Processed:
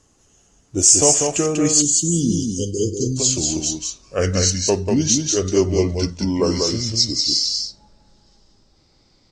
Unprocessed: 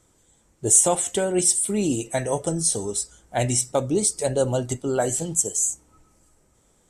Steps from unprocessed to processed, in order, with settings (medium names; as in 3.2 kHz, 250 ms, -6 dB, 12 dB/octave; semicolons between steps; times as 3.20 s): gliding tape speed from 86% -> 62%; delay 192 ms -4 dB; spectral selection erased 1.82–3.17 s, 510–2800 Hz; trim +3 dB